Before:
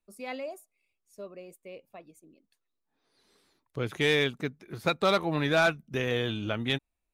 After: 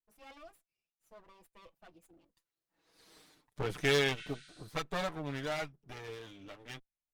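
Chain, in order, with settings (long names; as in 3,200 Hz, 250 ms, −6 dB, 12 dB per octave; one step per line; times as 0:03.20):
lower of the sound and its delayed copy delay 6.4 ms
source passing by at 0:03.16, 21 m/s, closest 5.2 metres
healed spectral selection 0:04.20–0:04.63, 1,300–9,700 Hz both
level +8 dB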